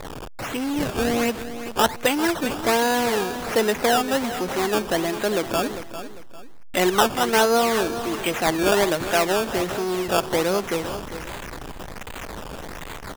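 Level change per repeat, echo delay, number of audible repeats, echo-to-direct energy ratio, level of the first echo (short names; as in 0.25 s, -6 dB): -10.0 dB, 0.399 s, 2, -11.0 dB, -11.5 dB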